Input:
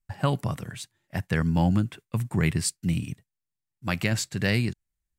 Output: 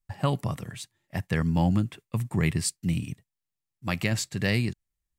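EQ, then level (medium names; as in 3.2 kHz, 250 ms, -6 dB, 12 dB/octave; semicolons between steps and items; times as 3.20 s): band-stop 1.5 kHz, Q 10; -1.0 dB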